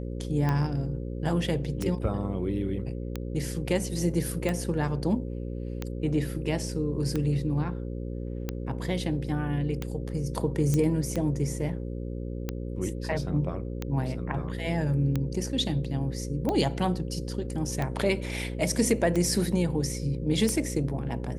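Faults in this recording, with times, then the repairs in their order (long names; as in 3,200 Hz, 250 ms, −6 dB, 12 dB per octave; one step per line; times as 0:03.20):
mains buzz 60 Hz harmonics 9 −34 dBFS
scratch tick 45 rpm −16 dBFS
0:10.74: click −14 dBFS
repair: click removal
hum removal 60 Hz, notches 9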